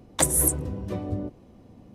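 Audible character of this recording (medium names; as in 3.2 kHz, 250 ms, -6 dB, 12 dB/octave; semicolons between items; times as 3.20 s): noise floor -53 dBFS; spectral tilt -3.0 dB/octave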